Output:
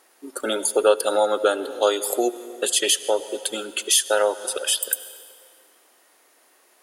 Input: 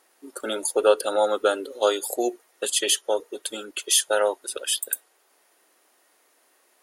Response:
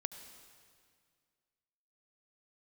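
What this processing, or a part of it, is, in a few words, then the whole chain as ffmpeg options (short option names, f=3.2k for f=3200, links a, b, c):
ducked reverb: -filter_complex "[0:a]asettb=1/sr,asplit=3[a][b][c];[a]atrim=end=0.754[d];[b]atrim=start=0.75:end=1.23,asetpts=PTS-STARTPTS,afade=t=in:d=0.004:c=qsin,afade=t=out:st=0.476:d=0.004:c=qsin,highshelf=f=8.2k:g=5.5[e];[c]atrim=start=1.226[f];[d][e]acrossfade=d=0.004:c1=hsin:c2=qsin[g];[g][f]acrossfade=d=0.004:c1=qsin:c2=hsin,asplit=3[h][i][j];[1:a]atrim=start_sample=2205[k];[i][k]afir=irnorm=-1:irlink=0[l];[j]apad=whole_len=301175[m];[l][m]sidechaincompress=threshold=-26dB:ratio=8:attack=46:release=230,volume=1dB[n];[h][n]amix=inputs=2:normalize=0,volume=-1dB"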